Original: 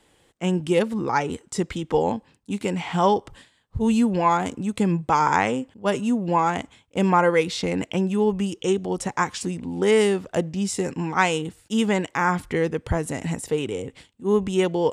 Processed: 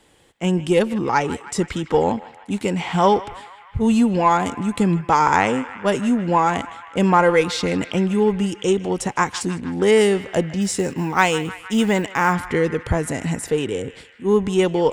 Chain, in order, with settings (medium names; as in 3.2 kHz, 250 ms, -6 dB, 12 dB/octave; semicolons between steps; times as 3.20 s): in parallel at -11 dB: one-sided clip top -27 dBFS; 10.61–12.34 s: on the sum: short-mantissa float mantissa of 4-bit; band-passed feedback delay 156 ms, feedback 80%, band-pass 1.8 kHz, level -14 dB; trim +2 dB